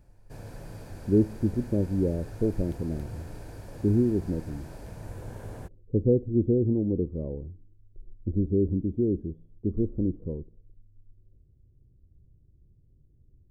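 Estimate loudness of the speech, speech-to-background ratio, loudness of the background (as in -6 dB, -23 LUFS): -28.0 LUFS, 16.0 dB, -44.0 LUFS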